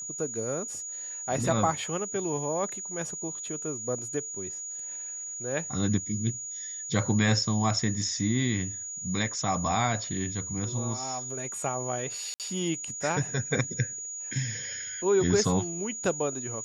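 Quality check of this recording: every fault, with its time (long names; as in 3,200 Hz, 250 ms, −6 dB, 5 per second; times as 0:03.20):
whistle 6,800 Hz −35 dBFS
0:12.34–0:12.40: drop-out 58 ms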